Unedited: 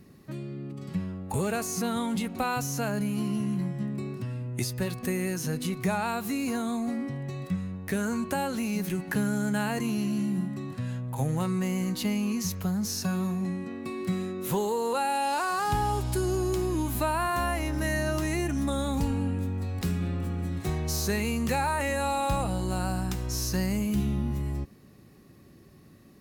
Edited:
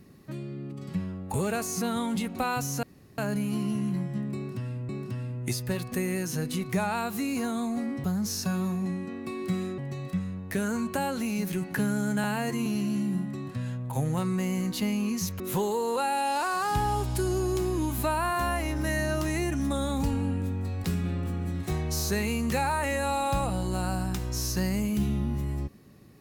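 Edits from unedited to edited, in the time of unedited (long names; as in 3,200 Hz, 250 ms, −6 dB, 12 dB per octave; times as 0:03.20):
0:02.83: splice in room tone 0.35 s
0:04.00–0:04.54: repeat, 2 plays
0:09.61–0:09.89: time-stretch 1.5×
0:12.63–0:14.37: move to 0:07.15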